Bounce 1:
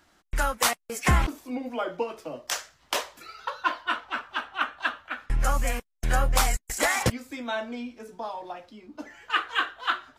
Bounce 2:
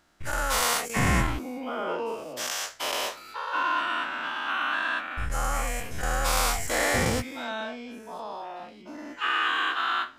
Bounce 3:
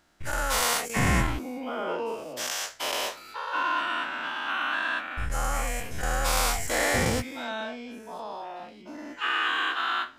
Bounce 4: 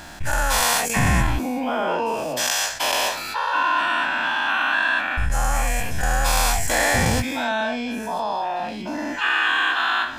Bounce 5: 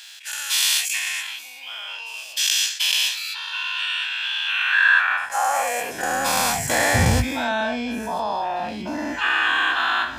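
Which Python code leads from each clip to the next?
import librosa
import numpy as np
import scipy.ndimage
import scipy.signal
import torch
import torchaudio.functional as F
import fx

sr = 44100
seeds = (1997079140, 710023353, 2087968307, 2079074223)

y1 = fx.spec_dilate(x, sr, span_ms=240)
y1 = y1 * 10.0 ** (-8.0 / 20.0)
y2 = fx.peak_eq(y1, sr, hz=1200.0, db=-2.5, octaves=0.31)
y3 = y2 + 0.43 * np.pad(y2, (int(1.2 * sr / 1000.0), 0))[:len(y2)]
y3 = fx.env_flatten(y3, sr, amount_pct=50)
y3 = y3 * 10.0 ** (2.5 / 20.0)
y4 = fx.filter_sweep_highpass(y3, sr, from_hz=3000.0, to_hz=61.0, start_s=4.43, end_s=7.24, q=2.1)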